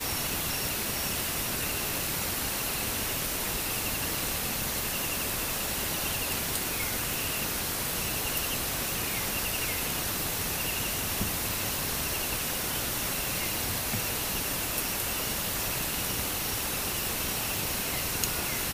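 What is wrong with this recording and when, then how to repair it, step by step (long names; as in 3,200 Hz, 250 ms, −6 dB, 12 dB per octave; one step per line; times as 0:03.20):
0:07.14: click
0:17.57: click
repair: click removal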